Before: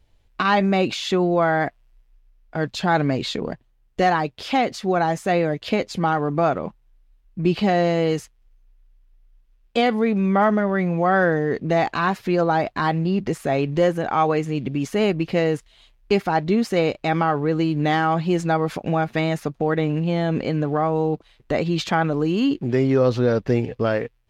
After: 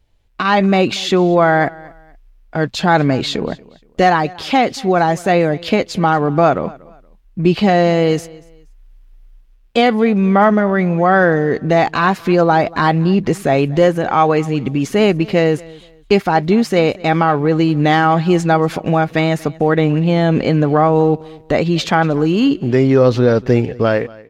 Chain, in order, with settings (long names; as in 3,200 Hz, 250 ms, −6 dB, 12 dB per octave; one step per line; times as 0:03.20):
automatic gain control
on a send: repeating echo 236 ms, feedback 28%, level −22.5 dB